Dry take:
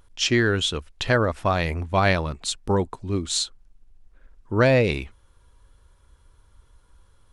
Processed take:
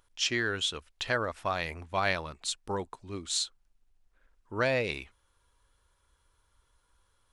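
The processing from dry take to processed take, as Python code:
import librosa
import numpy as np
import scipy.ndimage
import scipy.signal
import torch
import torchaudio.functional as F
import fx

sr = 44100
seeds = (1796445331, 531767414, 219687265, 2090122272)

y = fx.low_shelf(x, sr, hz=460.0, db=-11.0)
y = F.gain(torch.from_numpy(y), -5.5).numpy()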